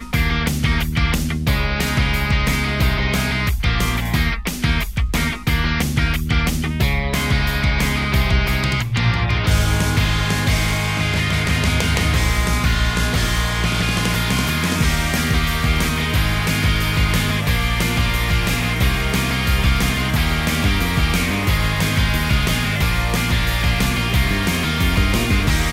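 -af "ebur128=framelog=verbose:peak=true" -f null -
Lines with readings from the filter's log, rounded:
Integrated loudness:
  I:         -18.5 LUFS
  Threshold: -28.5 LUFS
Loudness range:
  LRA:         1.4 LU
  Threshold: -38.5 LUFS
  LRA low:   -19.5 LUFS
  LRA high:  -18.1 LUFS
True peak:
  Peak:       -3.8 dBFS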